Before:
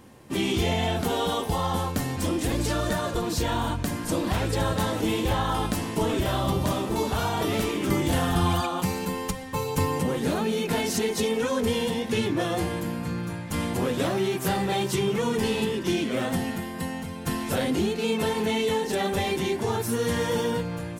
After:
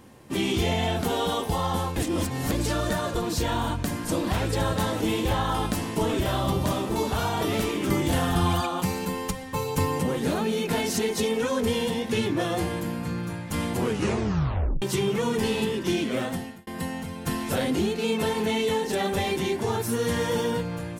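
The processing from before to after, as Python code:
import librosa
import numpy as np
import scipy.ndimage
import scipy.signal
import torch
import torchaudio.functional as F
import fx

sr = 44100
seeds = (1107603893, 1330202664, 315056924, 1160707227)

y = fx.edit(x, sr, fx.reverse_span(start_s=1.96, length_s=0.55),
    fx.tape_stop(start_s=13.79, length_s=1.03),
    fx.fade_out_span(start_s=16.16, length_s=0.51), tone=tone)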